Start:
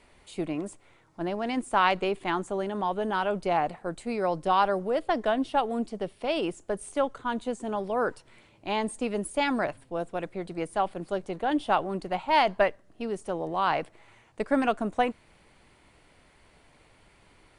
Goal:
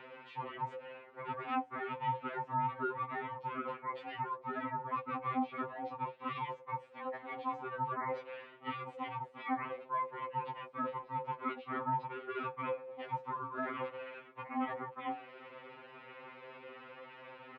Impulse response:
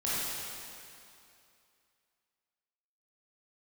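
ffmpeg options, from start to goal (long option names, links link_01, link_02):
-af "lowshelf=frequency=240:gain=-9.5,bandreject=frequency=60:width_type=h:width=6,bandreject=frequency=120:width_type=h:width=6,bandreject=frequency=180:width_type=h:width=6,bandreject=frequency=240:width_type=h:width=6,aecho=1:1:5.3:0.4,areverse,acompressor=threshold=-40dB:ratio=6,areverse,alimiter=level_in=13.5dB:limit=-24dB:level=0:latency=1:release=20,volume=-13.5dB,acompressor=mode=upward:threshold=-56dB:ratio=2.5,aeval=exprs='val(0)*sin(2*PI*520*n/s)':channel_layout=same,highpass=frequency=180:width=0.5412,highpass=frequency=180:width=1.3066,equalizer=frequency=280:width_type=q:width=4:gain=-5,equalizer=frequency=710:width_type=q:width=4:gain=-4,equalizer=frequency=1600:width_type=q:width=4:gain=-6,lowpass=frequency=2400:width=0.5412,lowpass=frequency=2400:width=1.3066,afftfilt=real='re*2.45*eq(mod(b,6),0)':imag='im*2.45*eq(mod(b,6),0)':win_size=2048:overlap=0.75,volume=16.5dB"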